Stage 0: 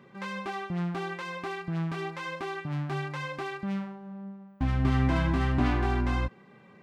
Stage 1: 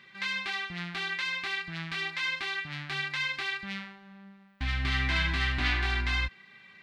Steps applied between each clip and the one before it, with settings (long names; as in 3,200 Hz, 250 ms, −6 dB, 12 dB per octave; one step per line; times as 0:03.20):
octave-band graphic EQ 125/250/500/1,000/2,000/4,000 Hz −9/−8/−12/−5/+9/+12 dB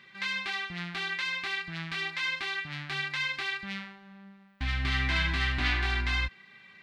no processing that can be heard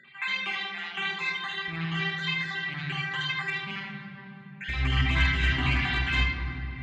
time-frequency cells dropped at random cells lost 50%
hard clipping −24 dBFS, distortion −21 dB
convolution reverb RT60 3.6 s, pre-delay 48 ms, DRR 1 dB
level −4 dB